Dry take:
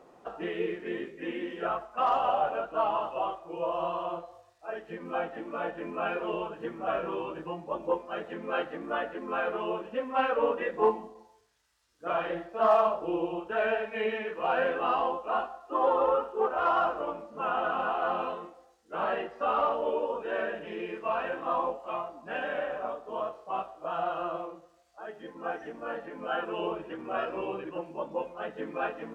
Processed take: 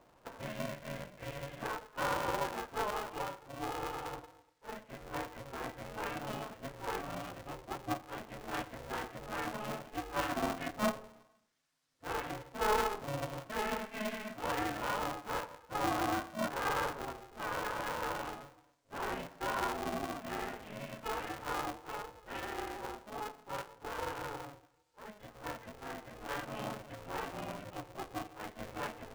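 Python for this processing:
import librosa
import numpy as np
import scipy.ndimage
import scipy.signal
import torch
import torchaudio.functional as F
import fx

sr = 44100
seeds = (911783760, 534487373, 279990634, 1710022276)

y = x * np.sign(np.sin(2.0 * np.pi * 210.0 * np.arange(len(x)) / sr))
y = F.gain(torch.from_numpy(y), -8.0).numpy()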